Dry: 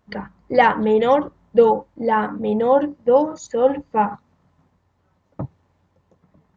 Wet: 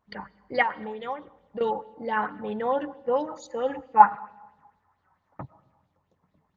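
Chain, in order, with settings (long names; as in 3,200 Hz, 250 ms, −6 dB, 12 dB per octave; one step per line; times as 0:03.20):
0:00.62–0:01.61: downward compressor 12 to 1, threshold −22 dBFS, peak gain reduction 15 dB
0:04.00–0:05.43: flat-topped bell 1,200 Hz +8.5 dB
convolution reverb RT60 1.3 s, pre-delay 65 ms, DRR 19.5 dB
dynamic equaliser 1,900 Hz, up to +4 dB, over −34 dBFS, Q 0.75
auto-filter bell 4.5 Hz 840–4,200 Hz +11 dB
level −12 dB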